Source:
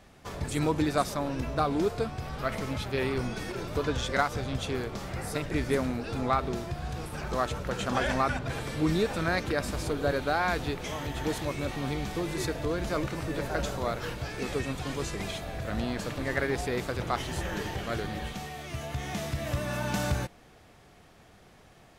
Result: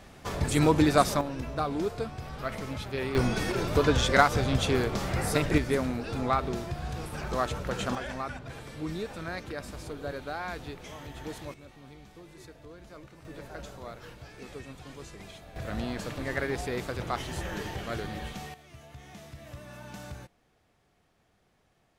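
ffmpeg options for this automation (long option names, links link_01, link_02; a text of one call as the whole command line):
ffmpeg -i in.wav -af "asetnsamples=nb_out_samples=441:pad=0,asendcmd='1.21 volume volume -3dB;3.15 volume volume 6dB;5.58 volume volume 0dB;7.95 volume volume -8.5dB;11.54 volume volume -18dB;13.25 volume volume -11.5dB;15.56 volume volume -2dB;18.54 volume volume -13.5dB',volume=5dB" out.wav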